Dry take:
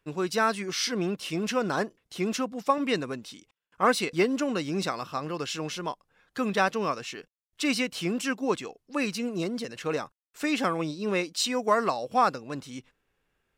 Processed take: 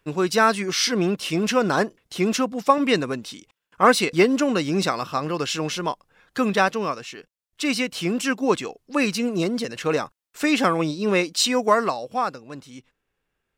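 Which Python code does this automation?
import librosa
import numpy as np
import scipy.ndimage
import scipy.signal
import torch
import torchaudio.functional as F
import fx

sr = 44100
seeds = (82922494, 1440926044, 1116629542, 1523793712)

y = fx.gain(x, sr, db=fx.line((6.4, 7.0), (7.1, 0.5), (8.58, 7.0), (11.6, 7.0), (12.25, -2.0)))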